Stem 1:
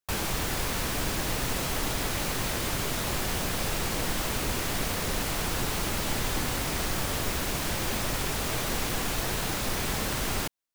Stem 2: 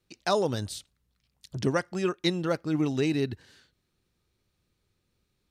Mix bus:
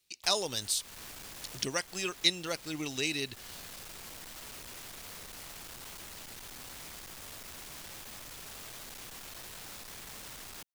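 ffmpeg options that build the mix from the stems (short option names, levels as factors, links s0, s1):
-filter_complex "[0:a]acrossover=split=280|3000[s0][s1][s2];[s1]acompressor=threshold=0.0178:ratio=6[s3];[s0][s3][s2]amix=inputs=3:normalize=0,asoftclip=type=tanh:threshold=0.02,adelay=150,volume=0.447[s4];[1:a]aexciter=amount=3.7:drive=4.6:freq=2100,volume=0.562,asplit=2[s5][s6];[s6]apad=whole_len=480283[s7];[s4][s7]sidechaincompress=threshold=0.0158:ratio=8:attack=49:release=349[s8];[s8][s5]amix=inputs=2:normalize=0,lowshelf=f=440:g=-10"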